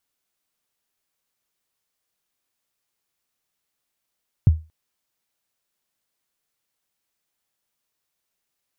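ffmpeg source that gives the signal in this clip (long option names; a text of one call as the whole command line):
ffmpeg -f lavfi -i "aevalsrc='0.501*pow(10,-3*t/0.27)*sin(2*PI*(140*0.023/log(79/140)*(exp(log(79/140)*min(t,0.023)/0.023)-1)+79*max(t-0.023,0)))':duration=0.23:sample_rate=44100" out.wav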